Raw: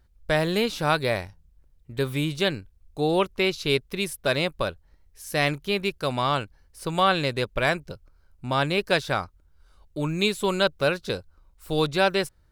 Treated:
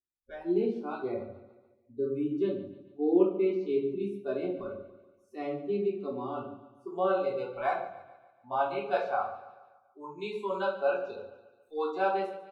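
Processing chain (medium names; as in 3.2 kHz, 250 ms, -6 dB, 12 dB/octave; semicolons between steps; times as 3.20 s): spectral noise reduction 28 dB; band-pass sweep 330 Hz -> 760 Hz, 6.76–7.49 s; on a send: feedback delay 143 ms, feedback 51%, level -16 dB; on the sum: simulated room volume 480 m³, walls furnished, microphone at 3.4 m; trim -4 dB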